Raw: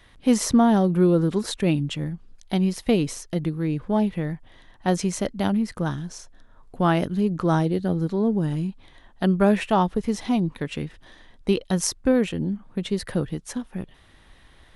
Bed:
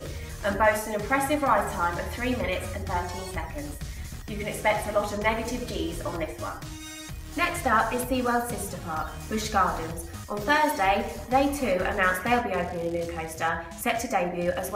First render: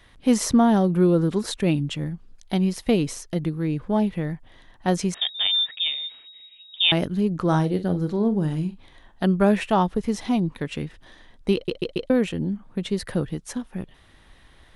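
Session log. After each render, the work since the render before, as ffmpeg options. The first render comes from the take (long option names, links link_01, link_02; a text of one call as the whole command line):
ffmpeg -i in.wav -filter_complex "[0:a]asettb=1/sr,asplit=3[link_01][link_02][link_03];[link_01]atrim=end=5.144[link_04];[link_02]atrim=start=5.14:end=6.92,asetpts=PTS-STARTPTS,afade=type=in:duration=0.004:curve=qsin,afade=type=out:start_time=1.776:duration=0.004:curve=qsin,lowpass=frequency=3200:width_type=q:width=0.5098,lowpass=frequency=3200:width_type=q:width=0.6013,lowpass=frequency=3200:width_type=q:width=0.9,lowpass=frequency=3200:width_type=q:width=2.563,afreqshift=-3800[link_05];[link_03]atrim=start=6.916[link_06];[link_04][link_05]acrossfade=duration=0.004:curve1=hsin:curve2=qsin[link_07];[link_07][link_06]acrossfade=duration=0.004:curve1=qsin:curve2=hsin,asettb=1/sr,asplit=3[link_08][link_09][link_10];[link_08]atrim=end=7.444[link_11];[link_09]atrim=start=7.44:end=9.24,asetpts=PTS-STARTPTS,afade=type=in:duration=0.004:curve=qsin,afade=type=out:start_time=1.796:duration=0.004:curve=qsin,asplit=2[link_12][link_13];[link_13]adelay=45,volume=-12dB[link_14];[link_12][link_14]amix=inputs=2:normalize=0,atrim=end_sample=79380[link_15];[link_10]atrim=start=9.236[link_16];[link_11][link_15]acrossfade=duration=0.004:curve1=hsin:curve2=qsin[link_17];[link_17][link_16]acrossfade=duration=0.004:curve1=qsin:curve2=hsin,asplit=5[link_18][link_19][link_20][link_21][link_22];[link_18]atrim=end=11.682[link_23];[link_19]atrim=start=11.538:end=11.682[link_24];[link_20]atrim=start=11.538:end=11.682[link_25];[link_21]atrim=start=11.538:end=11.682[link_26];[link_22]atrim=start=12.098[link_27];[link_23][link_24]acrossfade=duration=0.004:curve1=hsin:curve2=hsin[link_28];[link_28][link_25]acrossfade=duration=0.004:curve1=hsin:curve2=hsin[link_29];[link_29][link_26]acrossfade=duration=0.004:curve1=hsin:curve2=hsin[link_30];[link_30][link_27]acrossfade=duration=0.004:curve1=hsin:curve2=hsin" out.wav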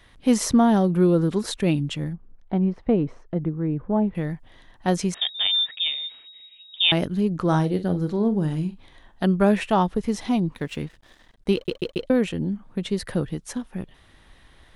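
ffmpeg -i in.wav -filter_complex "[0:a]asettb=1/sr,asplit=3[link_01][link_02][link_03];[link_01]atrim=end=2.134[link_04];[link_02]atrim=start=2.13:end=4.15,asetpts=PTS-STARTPTS,afade=type=in:duration=0.004:curve=qsin,afade=type=out:start_time=2.016:duration=0.004:curve=qsin,lowpass=1200[link_05];[link_03]atrim=start=4.146[link_06];[link_04][link_05]acrossfade=duration=0.004:curve1=hsin:curve2=qsin[link_07];[link_07][link_06]acrossfade=duration=0.004:curve1=qsin:curve2=hsin,asettb=1/sr,asplit=3[link_08][link_09][link_10];[link_08]atrim=end=10.554[link_11];[link_09]atrim=start=10.55:end=12.02,asetpts=PTS-STARTPTS,afade=type=in:duration=0.004:curve=qsin,afade=type=out:start_time=1.466:duration=0.004:curve=qsin,aeval=exprs='sgn(val(0))*max(abs(val(0))-0.00266,0)':channel_layout=same[link_12];[link_10]atrim=start=12.016[link_13];[link_11][link_12]acrossfade=duration=0.004:curve1=hsin:curve2=qsin[link_14];[link_14][link_13]acrossfade=duration=0.004:curve1=qsin:curve2=hsin" out.wav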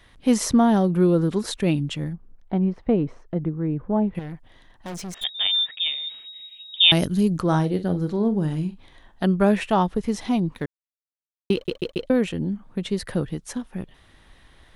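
ffmpeg -i in.wav -filter_complex "[0:a]asettb=1/sr,asplit=3[link_01][link_02][link_03];[link_01]atrim=end=4.194[link_04];[link_02]atrim=start=4.19:end=5.24,asetpts=PTS-STARTPTS,afade=type=in:duration=0.004:curve=qsin,afade=type=out:start_time=1.046:duration=0.004:curve=qsin,aeval=exprs='(tanh(35.5*val(0)+0.45)-tanh(0.45))/35.5':channel_layout=same[link_05];[link_03]atrim=start=5.236[link_06];[link_04][link_05]acrossfade=duration=0.004:curve1=hsin:curve2=qsin[link_07];[link_07][link_06]acrossfade=duration=0.004:curve1=qsin:curve2=hsin,asettb=1/sr,asplit=3[link_08][link_09][link_10];[link_08]atrim=end=6.074[link_11];[link_09]atrim=start=6.07:end=7.41,asetpts=PTS-STARTPTS,afade=type=in:duration=0.004:curve=qsin,afade=type=out:start_time=1.336:duration=0.004:curve=qsin,bass=frequency=250:gain=4,treble=frequency=4000:gain=13[link_12];[link_10]atrim=start=7.406[link_13];[link_11][link_12]acrossfade=duration=0.004:curve1=hsin:curve2=qsin[link_14];[link_14][link_13]acrossfade=duration=0.004:curve1=qsin:curve2=hsin,asplit=3[link_15][link_16][link_17];[link_15]atrim=end=10.66,asetpts=PTS-STARTPTS,afade=type=out:start_time=10.656:duration=0.004:curve=hsin[link_18];[link_16]atrim=start=10.66:end=11.5,asetpts=PTS-STARTPTS,volume=0[link_19];[link_17]atrim=start=11.5,asetpts=PTS-STARTPTS,afade=type=in:duration=0.004:curve=hsin[link_20];[link_18][link_19][link_20]concat=n=3:v=0:a=1" out.wav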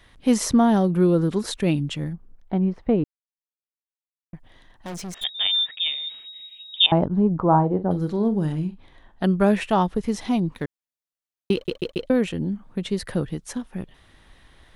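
ffmpeg -i in.wav -filter_complex "[0:a]asettb=1/sr,asplit=3[link_01][link_02][link_03];[link_01]atrim=end=6.864[link_04];[link_02]atrim=start=6.86:end=7.91,asetpts=PTS-STARTPTS,afade=type=in:duration=0.004:curve=qsin,afade=type=out:start_time=1.046:duration=0.004:curve=qsin,lowpass=frequency=910:width_type=q:width=3[link_05];[link_03]atrim=start=7.906[link_06];[link_04][link_05]acrossfade=duration=0.004:curve1=hsin:curve2=qsin[link_07];[link_07][link_06]acrossfade=duration=0.004:curve1=qsin:curve2=hsin,asettb=1/sr,asplit=3[link_08][link_09][link_10];[link_08]atrim=end=8.524[link_11];[link_09]atrim=start=8.52:end=9.24,asetpts=PTS-STARTPTS,afade=type=in:duration=0.004:curve=qsin,afade=type=out:start_time=0.716:duration=0.004:curve=qsin,highshelf=frequency=3300:gain=-8[link_12];[link_10]atrim=start=9.236[link_13];[link_11][link_12]acrossfade=duration=0.004:curve1=hsin:curve2=qsin[link_14];[link_14][link_13]acrossfade=duration=0.004:curve1=qsin:curve2=hsin,asplit=3[link_15][link_16][link_17];[link_15]atrim=end=3.04,asetpts=PTS-STARTPTS,afade=type=out:start_time=3.036:duration=0.004:curve=hsin[link_18];[link_16]atrim=start=3.04:end=4.33,asetpts=PTS-STARTPTS,volume=0[link_19];[link_17]atrim=start=4.33,asetpts=PTS-STARTPTS,afade=type=in:duration=0.004:curve=hsin[link_20];[link_18][link_19][link_20]concat=n=3:v=0:a=1" out.wav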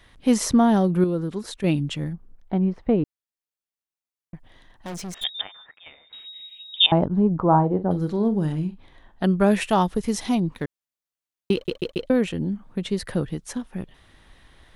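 ffmpeg -i in.wav -filter_complex "[0:a]asettb=1/sr,asplit=3[link_01][link_02][link_03];[link_01]atrim=end=5.414[link_04];[link_02]atrim=start=5.41:end=6.13,asetpts=PTS-STARTPTS,afade=type=in:duration=0.004:curve=qsin,afade=type=out:start_time=0.716:duration=0.004:curve=qsin,lowpass=frequency=1700:width=0.5412,lowpass=frequency=1700:width=1.3066[link_05];[link_03]atrim=start=6.126[link_06];[link_04][link_05]acrossfade=duration=0.004:curve1=hsin:curve2=qsin[link_07];[link_07][link_06]acrossfade=duration=0.004:curve1=qsin:curve2=hsin,asettb=1/sr,asplit=3[link_08][link_09][link_10];[link_08]atrim=end=9.514[link_11];[link_09]atrim=start=9.51:end=10.35,asetpts=PTS-STARTPTS,afade=type=in:duration=0.004:curve=qsin,afade=type=out:start_time=0.836:duration=0.004:curve=qsin,highshelf=frequency=5200:gain=10[link_12];[link_10]atrim=start=10.346[link_13];[link_11][link_12]acrossfade=duration=0.004:curve1=hsin:curve2=qsin[link_14];[link_14][link_13]acrossfade=duration=0.004:curve1=qsin:curve2=hsin,asplit=3[link_15][link_16][link_17];[link_15]atrim=end=1.042[link_18];[link_16]atrim=start=1.038:end=1.642,asetpts=PTS-STARTPTS,volume=-6dB[link_19];[link_17]atrim=start=1.638[link_20];[link_18][link_19]acrossfade=duration=0.004:curve1=hsin:curve2=hsin[link_21];[link_21][link_20]acrossfade=duration=0.004:curve1=hsin:curve2=hsin" out.wav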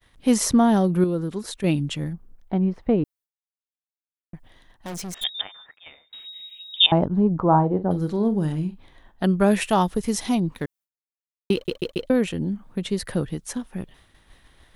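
ffmpeg -i in.wav -af "agate=range=-33dB:threshold=-48dB:ratio=3:detection=peak,highshelf=frequency=9400:gain=8.5" out.wav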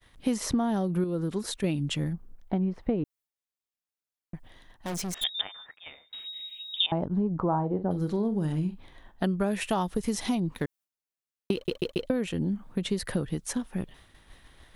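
ffmpeg -i in.wav -filter_complex "[0:a]acrossover=split=4200[link_01][link_02];[link_02]alimiter=limit=-22.5dB:level=0:latency=1:release=147[link_03];[link_01][link_03]amix=inputs=2:normalize=0,acompressor=threshold=-24dB:ratio=6" out.wav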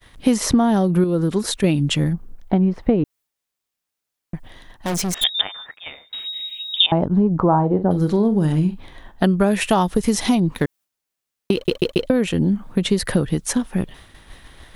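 ffmpeg -i in.wav -af "volume=10.5dB,alimiter=limit=-3dB:level=0:latency=1" out.wav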